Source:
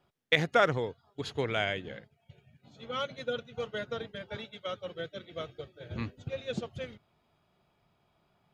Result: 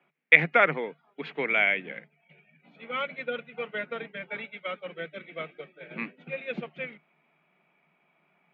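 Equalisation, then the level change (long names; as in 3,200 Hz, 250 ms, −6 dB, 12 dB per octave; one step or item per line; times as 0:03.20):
Chebyshev high-pass filter 150 Hz, order 8
low-pass with resonance 2,300 Hz, resonance Q 5.6
high-frequency loss of the air 92 metres
+1.0 dB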